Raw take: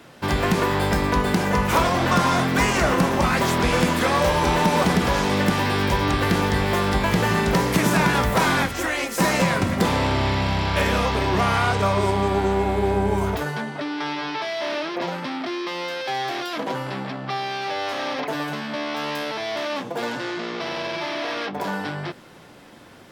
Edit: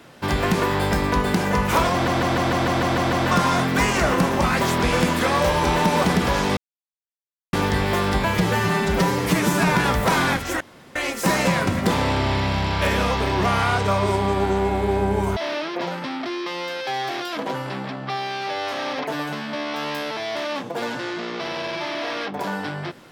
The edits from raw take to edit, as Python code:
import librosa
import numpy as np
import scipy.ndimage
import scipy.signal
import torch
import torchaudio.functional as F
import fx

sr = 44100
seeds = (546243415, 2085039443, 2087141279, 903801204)

y = fx.edit(x, sr, fx.stutter(start_s=1.93, slice_s=0.15, count=9),
    fx.silence(start_s=5.37, length_s=0.96),
    fx.stretch_span(start_s=7.04, length_s=1.01, factor=1.5),
    fx.insert_room_tone(at_s=8.9, length_s=0.35),
    fx.cut(start_s=13.31, length_s=1.26), tone=tone)